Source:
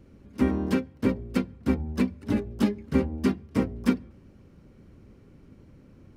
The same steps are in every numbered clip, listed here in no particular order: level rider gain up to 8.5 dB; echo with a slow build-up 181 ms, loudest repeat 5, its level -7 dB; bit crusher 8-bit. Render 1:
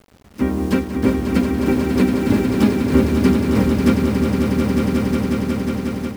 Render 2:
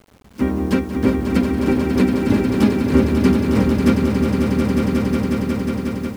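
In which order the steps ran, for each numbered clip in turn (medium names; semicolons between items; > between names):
bit crusher > echo with a slow build-up > level rider; echo with a slow build-up > level rider > bit crusher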